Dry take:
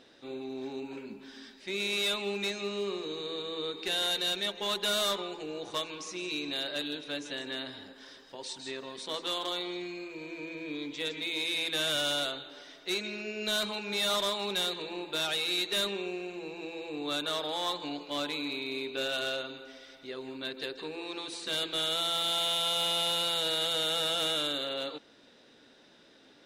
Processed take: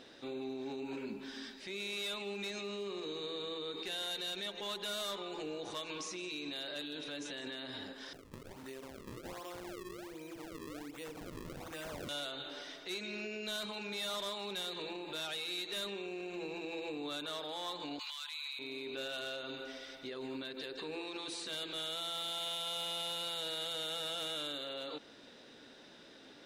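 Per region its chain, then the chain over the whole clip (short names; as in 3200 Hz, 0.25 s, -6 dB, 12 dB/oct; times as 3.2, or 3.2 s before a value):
8.13–12.09 LPF 1500 Hz 6 dB/oct + compressor 2.5:1, threshold -50 dBFS + decimation with a swept rate 34×, swing 160% 1.3 Hz
17.99–18.59 steep high-pass 940 Hz + high shelf 2000 Hz +11.5 dB
whole clip: compressor, threshold -36 dBFS; limiter -36 dBFS; gain +2.5 dB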